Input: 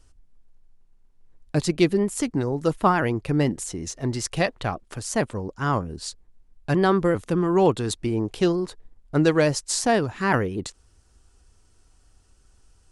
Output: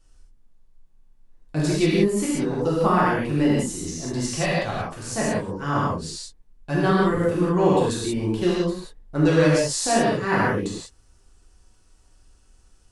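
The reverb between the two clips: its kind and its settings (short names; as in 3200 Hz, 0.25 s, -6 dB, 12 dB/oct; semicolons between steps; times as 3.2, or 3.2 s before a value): non-linear reverb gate 0.21 s flat, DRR -8 dB; gain -7 dB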